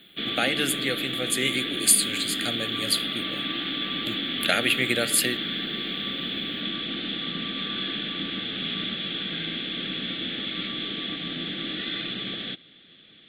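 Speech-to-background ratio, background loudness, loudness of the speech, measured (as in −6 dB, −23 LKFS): 4.0 dB, −28.5 LKFS, −24.5 LKFS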